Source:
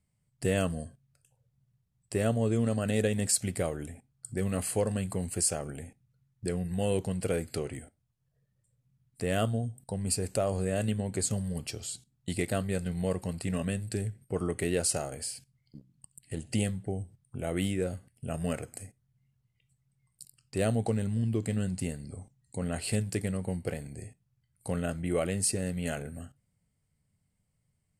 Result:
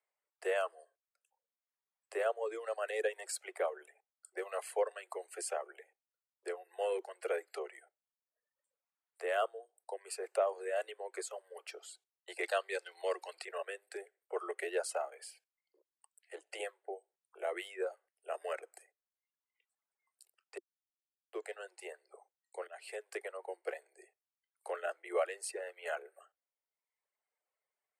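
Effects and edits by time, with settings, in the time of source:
0:12.43–0:13.45: parametric band 4,300 Hz +11.5 dB 1.8 octaves
0:20.58–0:21.33: silence
0:22.67–0:23.13: fade in, from −12.5 dB
whole clip: Butterworth high-pass 350 Hz 96 dB per octave; reverb reduction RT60 1 s; three-way crossover with the lows and the highs turned down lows −23 dB, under 470 Hz, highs −16 dB, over 2,300 Hz; level +2 dB

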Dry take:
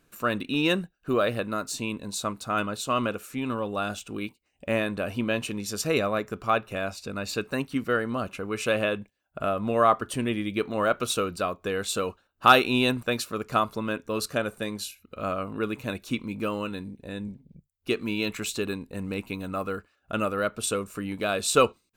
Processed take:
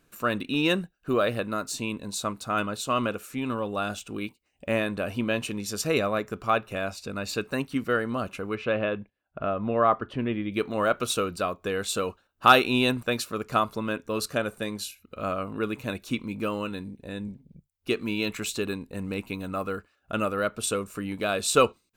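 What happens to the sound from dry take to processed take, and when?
0:08.55–0:10.52: high-frequency loss of the air 320 metres

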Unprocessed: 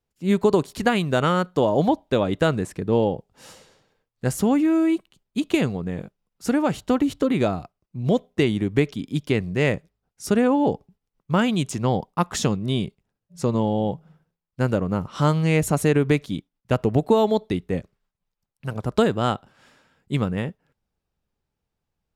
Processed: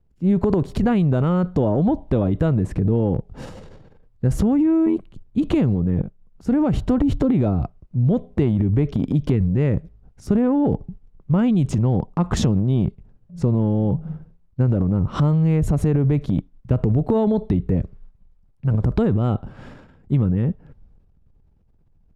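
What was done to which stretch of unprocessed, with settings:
0:04.86–0:05.38: amplitude modulation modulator 89 Hz, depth 55%
0:06.02–0:06.82: fade in, from −12 dB
whole clip: spectral tilt −4.5 dB per octave; transient designer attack −5 dB, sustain +9 dB; downward compressor, threshold −18 dBFS; level +2.5 dB

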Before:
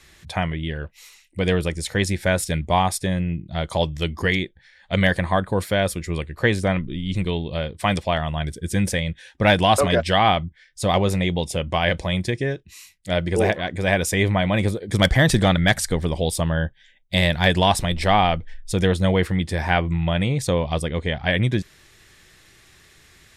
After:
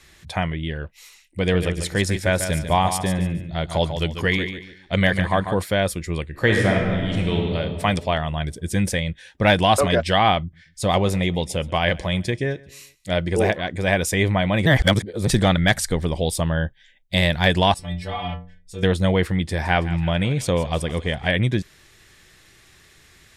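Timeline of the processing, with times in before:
0:01.39–0:05.62: repeating echo 144 ms, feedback 30%, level −9 dB
0:06.30–0:07.56: thrown reverb, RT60 2 s, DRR 0 dB
0:10.40–0:13.16: repeating echo 129 ms, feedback 47%, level −23 dB
0:14.66–0:15.27: reverse
0:17.74–0:18.83: stiff-string resonator 87 Hz, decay 0.5 s, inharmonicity 0.008
0:19.35–0:21.31: feedback echo with a high-pass in the loop 164 ms, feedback 61%, high-pass 900 Hz, level −13.5 dB

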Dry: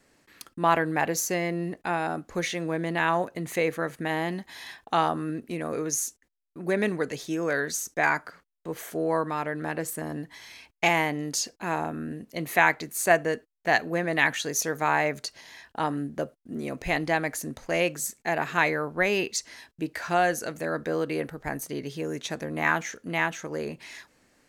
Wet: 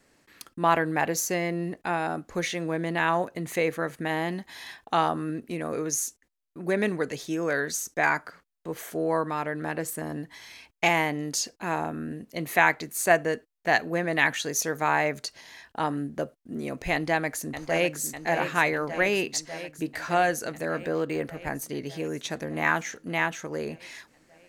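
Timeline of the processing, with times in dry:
0:16.93–0:18.00: delay throw 600 ms, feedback 75%, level −9 dB
0:20.78–0:21.25: linearly interpolated sample-rate reduction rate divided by 4×

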